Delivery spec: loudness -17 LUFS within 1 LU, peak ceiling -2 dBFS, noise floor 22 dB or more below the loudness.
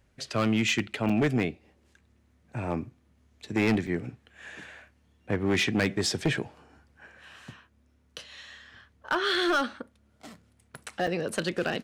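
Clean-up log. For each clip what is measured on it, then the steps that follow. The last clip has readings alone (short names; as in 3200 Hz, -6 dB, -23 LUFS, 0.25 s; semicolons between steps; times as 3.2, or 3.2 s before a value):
clipped 0.9%; flat tops at -19.0 dBFS; dropouts 3; longest dropout 5.3 ms; loudness -28.0 LUFS; peak -19.0 dBFS; loudness target -17.0 LUFS
-> clip repair -19 dBFS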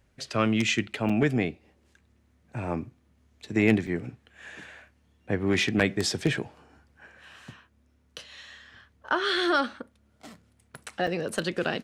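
clipped 0.0%; dropouts 3; longest dropout 5.3 ms
-> interpolate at 1.09/3.87/11.07, 5.3 ms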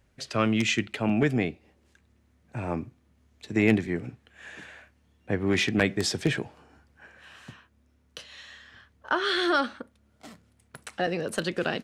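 dropouts 0; loudness -27.0 LUFS; peak -10.0 dBFS; loudness target -17.0 LUFS
-> gain +10 dB; limiter -2 dBFS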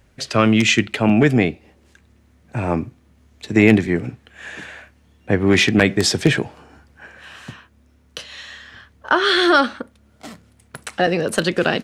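loudness -17.5 LUFS; peak -2.0 dBFS; noise floor -56 dBFS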